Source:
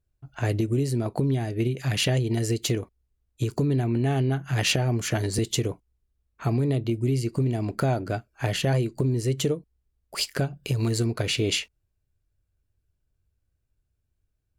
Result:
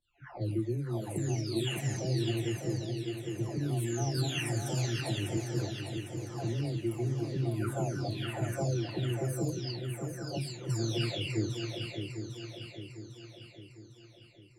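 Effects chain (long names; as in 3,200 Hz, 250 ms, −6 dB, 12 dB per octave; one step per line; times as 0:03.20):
every frequency bin delayed by itself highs early, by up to 876 ms
parametric band 320 Hz +3.5 dB 0.45 octaves
low-pass that shuts in the quiet parts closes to 420 Hz, open at −25 dBFS
feedback echo with a long and a short gap by turns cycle 802 ms, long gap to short 3 to 1, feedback 49%, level −6 dB
level −7.5 dB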